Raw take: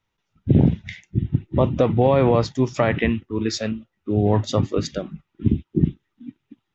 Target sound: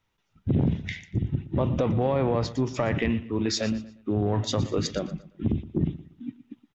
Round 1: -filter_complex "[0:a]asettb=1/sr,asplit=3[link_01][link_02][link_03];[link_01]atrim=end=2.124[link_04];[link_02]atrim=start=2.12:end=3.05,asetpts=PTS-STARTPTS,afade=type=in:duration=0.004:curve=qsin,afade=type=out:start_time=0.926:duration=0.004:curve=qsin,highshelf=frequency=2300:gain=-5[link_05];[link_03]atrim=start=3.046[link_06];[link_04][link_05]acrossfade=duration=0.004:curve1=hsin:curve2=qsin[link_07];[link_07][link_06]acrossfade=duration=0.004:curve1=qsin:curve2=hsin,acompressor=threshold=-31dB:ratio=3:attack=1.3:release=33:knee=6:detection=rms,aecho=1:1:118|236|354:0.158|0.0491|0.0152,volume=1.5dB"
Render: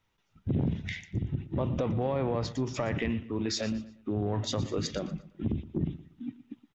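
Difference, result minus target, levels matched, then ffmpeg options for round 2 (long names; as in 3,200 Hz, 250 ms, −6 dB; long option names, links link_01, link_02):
downward compressor: peak gain reduction +5.5 dB
-filter_complex "[0:a]asettb=1/sr,asplit=3[link_01][link_02][link_03];[link_01]atrim=end=2.124[link_04];[link_02]atrim=start=2.12:end=3.05,asetpts=PTS-STARTPTS,afade=type=in:duration=0.004:curve=qsin,afade=type=out:start_time=0.926:duration=0.004:curve=qsin,highshelf=frequency=2300:gain=-5[link_05];[link_03]atrim=start=3.046[link_06];[link_04][link_05]acrossfade=duration=0.004:curve1=hsin:curve2=qsin[link_07];[link_07][link_06]acrossfade=duration=0.004:curve1=qsin:curve2=hsin,acompressor=threshold=-23dB:ratio=3:attack=1.3:release=33:knee=6:detection=rms,aecho=1:1:118|236|354:0.158|0.0491|0.0152,volume=1.5dB"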